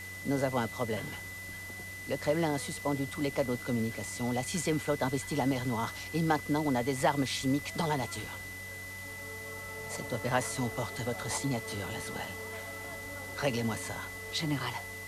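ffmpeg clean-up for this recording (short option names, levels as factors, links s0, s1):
-af "adeclick=t=4,bandreject=f=94.4:t=h:w=4,bandreject=f=188.8:t=h:w=4,bandreject=f=283.2:t=h:w=4,bandreject=f=377.6:t=h:w=4,bandreject=f=472:t=h:w=4,bandreject=f=2000:w=30,afwtdn=0.0035"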